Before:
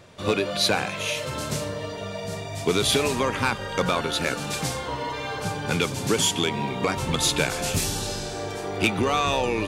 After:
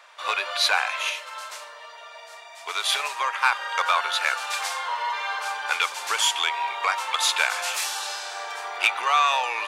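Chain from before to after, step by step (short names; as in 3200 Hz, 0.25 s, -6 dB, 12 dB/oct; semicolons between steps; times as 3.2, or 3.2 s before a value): HPF 900 Hz 24 dB/oct; high shelf 3100 Hz -11 dB; 1.09–3.52 upward expander 1.5:1, over -41 dBFS; gain +8 dB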